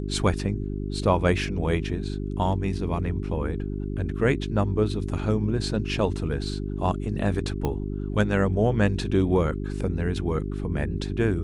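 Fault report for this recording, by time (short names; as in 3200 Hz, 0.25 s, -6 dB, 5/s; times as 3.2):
hum 50 Hz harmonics 8 -30 dBFS
7.65 pop -14 dBFS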